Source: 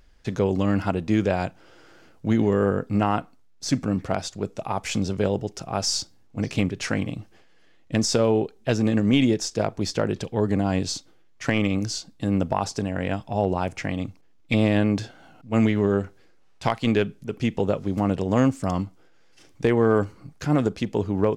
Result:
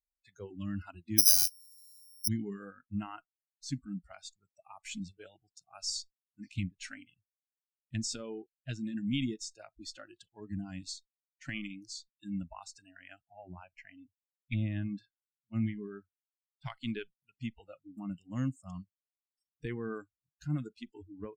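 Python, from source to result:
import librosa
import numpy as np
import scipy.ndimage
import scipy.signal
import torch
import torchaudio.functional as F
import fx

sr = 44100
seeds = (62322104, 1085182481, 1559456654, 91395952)

y = fx.resample_bad(x, sr, factor=8, down='none', up='zero_stuff', at=(1.18, 2.28))
y = fx.lowpass(y, sr, hz=2700.0, slope=6, at=(13.28, 16.66))
y = fx.bin_expand(y, sr, power=1.5)
y = fx.tone_stack(y, sr, knobs='6-0-2')
y = fx.noise_reduce_blind(y, sr, reduce_db=30)
y = y * librosa.db_to_amplitude(7.5)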